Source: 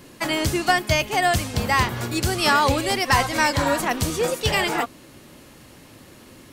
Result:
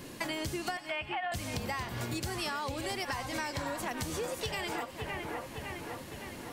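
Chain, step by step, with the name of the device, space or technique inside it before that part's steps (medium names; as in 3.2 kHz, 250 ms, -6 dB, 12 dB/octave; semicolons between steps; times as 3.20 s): band-stop 1.3 kHz, Q 20; 0.77–1.32 s: elliptic band-pass 670–3000 Hz; two-band feedback delay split 2.8 kHz, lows 559 ms, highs 94 ms, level -14 dB; serial compression, peaks first (compression, threshold -28 dBFS, peak gain reduction 14 dB; compression 2:1, threshold -36 dBFS, peak gain reduction 6.5 dB)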